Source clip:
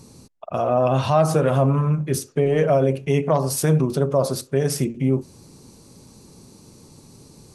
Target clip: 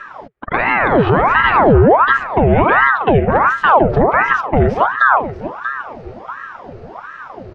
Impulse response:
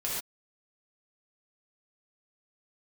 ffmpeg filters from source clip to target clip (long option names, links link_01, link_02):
-filter_complex "[0:a]aemphasis=mode=production:type=cd,acompressor=threshold=-23dB:ratio=4,highpass=frequency=120:width=0.5412,highpass=frequency=120:width=1.3066,equalizer=frequency=140:width_type=q:width=4:gain=8,equalizer=frequency=720:width_type=q:width=4:gain=-9,equalizer=frequency=1500:width_type=q:width=4:gain=5,lowpass=frequency=2300:width=0.5412,lowpass=frequency=2300:width=1.3066,asplit=2[link_01][link_02];[link_02]aecho=0:1:635|1270|1905|2540:0.2|0.0758|0.0288|0.0109[link_03];[link_01][link_03]amix=inputs=2:normalize=0,alimiter=level_in=16dB:limit=-1dB:release=50:level=0:latency=1,aeval=exprs='val(0)*sin(2*PI*860*n/s+860*0.75/1.4*sin(2*PI*1.4*n/s))':channel_layout=same"